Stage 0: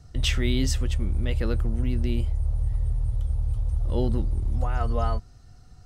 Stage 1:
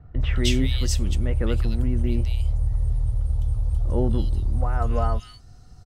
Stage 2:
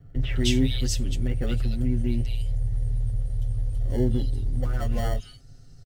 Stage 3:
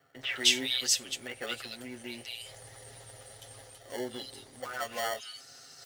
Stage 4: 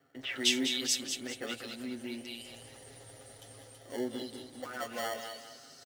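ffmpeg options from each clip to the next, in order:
ffmpeg -i in.wav -filter_complex "[0:a]acrossover=split=2200[link_01][link_02];[link_02]adelay=210[link_03];[link_01][link_03]amix=inputs=2:normalize=0,volume=2.5dB" out.wav
ffmpeg -i in.wav -filter_complex "[0:a]aecho=1:1:7.5:0.88,acrossover=split=680|1400[link_01][link_02][link_03];[link_02]acrusher=samples=35:mix=1:aa=0.000001[link_04];[link_01][link_04][link_03]amix=inputs=3:normalize=0,volume=-3.5dB" out.wav
ffmpeg -i in.wav -af "highpass=850,areverse,acompressor=mode=upward:threshold=-47dB:ratio=2.5,areverse,volume=5dB" out.wav
ffmpeg -i in.wav -af "equalizer=frequency=270:width=1.3:gain=10,aecho=1:1:198|396|594|792:0.376|0.139|0.0515|0.019,volume=-4dB" out.wav

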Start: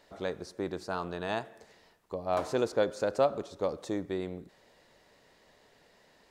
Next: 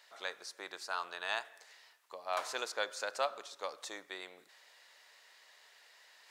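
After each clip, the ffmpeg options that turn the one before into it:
ffmpeg -i in.wav -af "highpass=1300,areverse,acompressor=mode=upward:threshold=-60dB:ratio=2.5,areverse,volume=3.5dB" out.wav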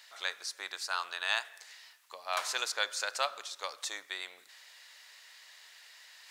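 ffmpeg -i in.wav -af "tiltshelf=frequency=810:gain=-8.5" out.wav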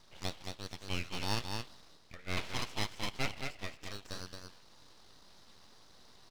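ffmpeg -i in.wav -af "highpass=frequency=480:width_type=q:width=0.5412,highpass=frequency=480:width_type=q:width=1.307,lowpass=frequency=3200:width_type=q:width=0.5176,lowpass=frequency=3200:width_type=q:width=0.7071,lowpass=frequency=3200:width_type=q:width=1.932,afreqshift=80,aecho=1:1:221:0.562,aeval=exprs='abs(val(0))':channel_layout=same" out.wav

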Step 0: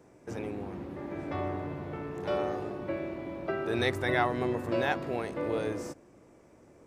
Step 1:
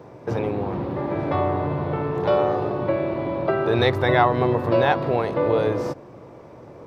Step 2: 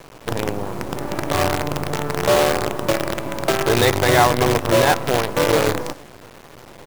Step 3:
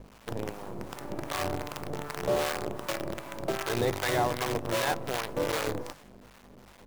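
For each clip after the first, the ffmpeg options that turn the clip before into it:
ffmpeg -i in.wav -filter_complex "[0:a]equalizer=frequency=125:width_type=o:width=1:gain=11,equalizer=frequency=500:width_type=o:width=1:gain=7,equalizer=frequency=1000:width_type=o:width=1:gain=9,equalizer=frequency=4000:width_type=o:width=1:gain=8,equalizer=frequency=8000:width_type=o:width=1:gain=-12,asplit=2[link_01][link_02];[link_02]acompressor=threshold=-30dB:ratio=6,volume=2.5dB[link_03];[link_01][link_03]amix=inputs=2:normalize=0" out.wav
ffmpeg -i in.wav -af "aecho=1:1:102|204|306|408:0.106|0.0551|0.0286|0.0149,acrusher=bits=4:dc=4:mix=0:aa=0.000001,volume=2.5dB" out.wav
ffmpeg -i in.wav -filter_complex "[0:a]aeval=exprs='val(0)+0.0178*(sin(2*PI*50*n/s)+sin(2*PI*2*50*n/s)/2+sin(2*PI*3*50*n/s)/3+sin(2*PI*4*50*n/s)/4+sin(2*PI*5*50*n/s)/5)':channel_layout=same,acrossover=split=770[link_01][link_02];[link_01]aeval=exprs='val(0)*(1-0.7/2+0.7/2*cos(2*PI*2.6*n/s))':channel_layout=same[link_03];[link_02]aeval=exprs='val(0)*(1-0.7/2-0.7/2*cos(2*PI*2.6*n/s))':channel_layout=same[link_04];[link_03][link_04]amix=inputs=2:normalize=0,bandreject=frequency=50:width_type=h:width=6,bandreject=frequency=100:width_type=h:width=6,bandreject=frequency=150:width_type=h:width=6,volume=-9dB" out.wav

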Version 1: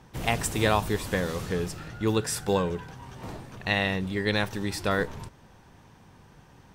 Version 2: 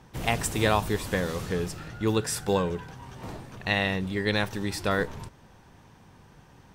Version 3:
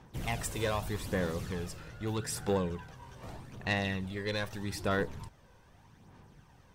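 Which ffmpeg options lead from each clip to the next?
ffmpeg -i in.wav -af anull out.wav
ffmpeg -i in.wav -af "asoftclip=type=tanh:threshold=-18.5dB,aphaser=in_gain=1:out_gain=1:delay=2:decay=0.42:speed=0.81:type=sinusoidal,volume=-7dB" out.wav

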